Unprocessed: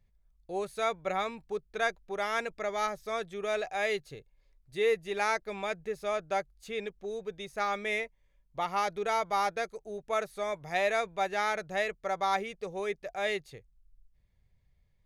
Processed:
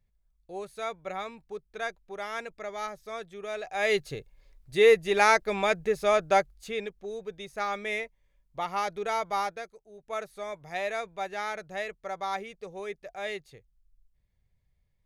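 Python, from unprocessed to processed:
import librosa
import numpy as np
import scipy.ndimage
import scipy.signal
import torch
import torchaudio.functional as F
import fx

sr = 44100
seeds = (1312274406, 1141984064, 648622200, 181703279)

y = fx.gain(x, sr, db=fx.line((3.6, -4.0), (4.0, 8.5), (6.37, 8.5), (6.96, 0.0), (9.39, 0.0), (9.87, -13.0), (10.14, -3.5)))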